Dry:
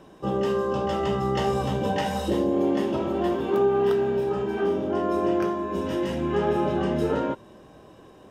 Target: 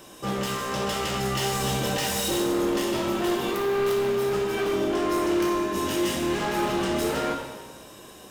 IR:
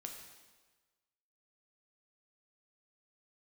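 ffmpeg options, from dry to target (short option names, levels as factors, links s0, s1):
-filter_complex "[0:a]crystalizer=i=8:c=0,volume=16.8,asoftclip=hard,volume=0.0596[s0];[1:a]atrim=start_sample=2205[s1];[s0][s1]afir=irnorm=-1:irlink=0,volume=1.58"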